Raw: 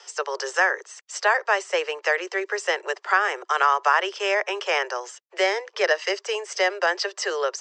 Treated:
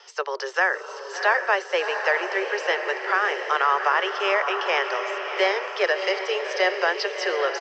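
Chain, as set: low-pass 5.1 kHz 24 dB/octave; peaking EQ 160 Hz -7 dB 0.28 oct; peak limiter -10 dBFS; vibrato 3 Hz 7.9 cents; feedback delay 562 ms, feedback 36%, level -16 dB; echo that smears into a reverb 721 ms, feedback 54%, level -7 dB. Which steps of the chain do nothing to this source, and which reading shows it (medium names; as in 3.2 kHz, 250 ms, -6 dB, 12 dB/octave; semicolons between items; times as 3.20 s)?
peaking EQ 160 Hz: input has nothing below 300 Hz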